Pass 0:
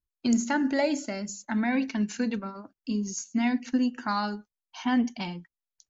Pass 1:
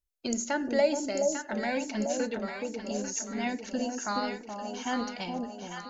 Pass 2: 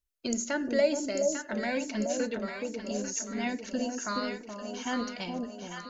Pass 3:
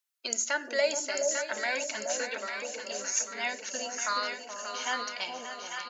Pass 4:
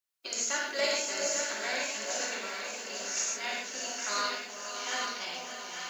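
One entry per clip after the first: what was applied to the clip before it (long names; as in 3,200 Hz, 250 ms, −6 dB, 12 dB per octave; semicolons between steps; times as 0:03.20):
octave-band graphic EQ 125/250/500/1,000/2,000/4,000 Hz −9/−11/+5/−7/−4/−3 dB; on a send: delay that swaps between a low-pass and a high-pass 423 ms, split 840 Hz, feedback 70%, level −3 dB; on the sum: level +2.5 dB
notch filter 820 Hz, Q 5.1
high-pass filter 840 Hz 12 dB per octave; on a send: single-tap delay 582 ms −10 dB; on the sum: level +5 dB
compressing power law on the bin magnitudes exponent 0.66; reverb whose tail is shaped and stops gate 170 ms flat, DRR −4.5 dB; level −7 dB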